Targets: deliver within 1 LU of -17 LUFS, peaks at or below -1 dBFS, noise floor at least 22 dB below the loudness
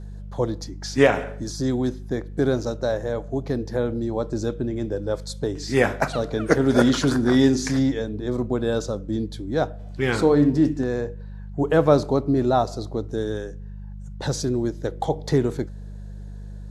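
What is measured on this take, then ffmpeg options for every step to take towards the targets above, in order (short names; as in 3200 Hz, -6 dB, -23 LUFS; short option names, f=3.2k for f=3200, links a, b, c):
hum 50 Hz; harmonics up to 200 Hz; hum level -33 dBFS; loudness -23.5 LUFS; peak -2.5 dBFS; loudness target -17.0 LUFS
-> -af "bandreject=f=50:t=h:w=4,bandreject=f=100:t=h:w=4,bandreject=f=150:t=h:w=4,bandreject=f=200:t=h:w=4"
-af "volume=6.5dB,alimiter=limit=-1dB:level=0:latency=1"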